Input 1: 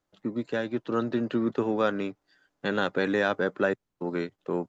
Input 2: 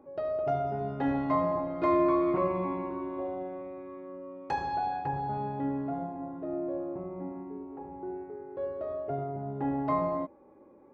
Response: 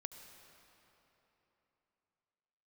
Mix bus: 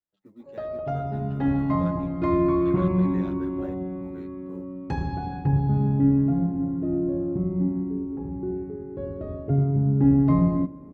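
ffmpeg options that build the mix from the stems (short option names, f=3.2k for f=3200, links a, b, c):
-filter_complex "[0:a]acrusher=bits=9:mode=log:mix=0:aa=0.000001,asplit=2[a][b];[b]adelay=9.1,afreqshift=-2.6[c];[a][c]amix=inputs=2:normalize=1,volume=-17dB[d];[1:a]asubboost=boost=11.5:cutoff=210,adelay=400,volume=-1dB,asplit=2[e][f];[f]volume=-11.5dB[g];[2:a]atrim=start_sample=2205[h];[g][h]afir=irnorm=-1:irlink=0[i];[d][e][i]amix=inputs=3:normalize=0,equalizer=f=210:w=1.7:g=3.5"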